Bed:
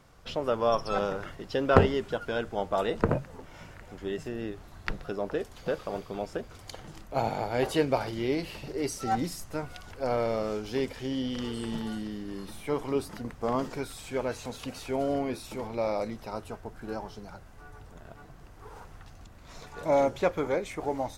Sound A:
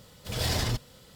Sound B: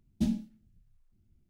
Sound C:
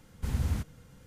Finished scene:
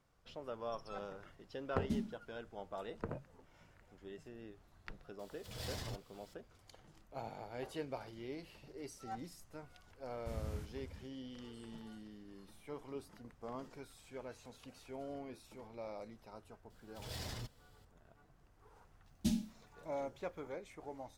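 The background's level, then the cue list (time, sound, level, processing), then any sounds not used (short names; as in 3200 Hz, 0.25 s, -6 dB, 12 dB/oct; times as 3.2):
bed -17 dB
1.69 add B -9 dB
5.19 add A -16 dB + mismatched tape noise reduction encoder only
10.03 add C -13 dB + outdoor echo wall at 67 m, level -10 dB
16.7 add A -16.5 dB
19.04 add B -6 dB + high shelf 2200 Hz +11.5 dB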